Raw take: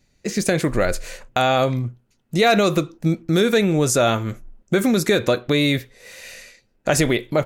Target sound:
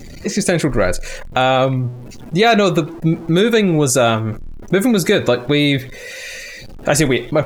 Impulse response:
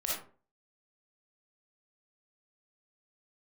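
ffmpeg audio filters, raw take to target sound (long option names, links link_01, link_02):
-af "aeval=exprs='val(0)+0.5*0.0335*sgn(val(0))':channel_layout=same,afftdn=noise_reduction=14:noise_floor=-38,volume=3dB"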